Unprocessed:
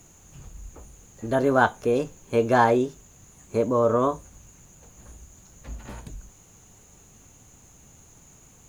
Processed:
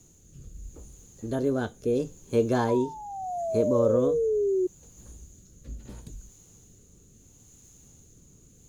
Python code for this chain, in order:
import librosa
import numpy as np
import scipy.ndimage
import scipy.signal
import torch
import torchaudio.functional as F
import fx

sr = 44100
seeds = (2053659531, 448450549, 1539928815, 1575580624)

y = fx.spec_paint(x, sr, seeds[0], shape='fall', start_s=2.68, length_s=1.99, low_hz=360.0, high_hz=1000.0, level_db=-21.0)
y = fx.rotary(y, sr, hz=0.75)
y = fx.band_shelf(y, sr, hz=1300.0, db=-8.5, octaves=2.5)